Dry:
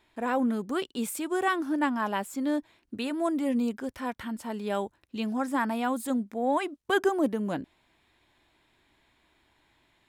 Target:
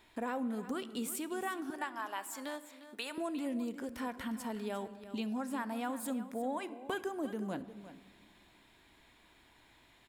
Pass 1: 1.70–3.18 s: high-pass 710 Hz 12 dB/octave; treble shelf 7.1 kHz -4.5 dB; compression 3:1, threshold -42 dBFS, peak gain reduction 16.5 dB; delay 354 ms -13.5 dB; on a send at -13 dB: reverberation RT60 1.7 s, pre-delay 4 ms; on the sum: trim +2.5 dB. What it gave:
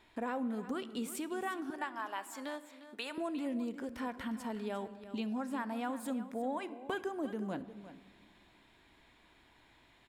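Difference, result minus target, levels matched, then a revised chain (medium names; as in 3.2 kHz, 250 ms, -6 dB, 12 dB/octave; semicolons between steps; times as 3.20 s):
8 kHz band -4.5 dB
1.70–3.18 s: high-pass 710 Hz 12 dB/octave; treble shelf 7.1 kHz +5 dB; compression 3:1, threshold -42 dBFS, peak gain reduction 16.5 dB; delay 354 ms -13.5 dB; on a send at -13 dB: reverberation RT60 1.7 s, pre-delay 4 ms; on the sum: trim +2.5 dB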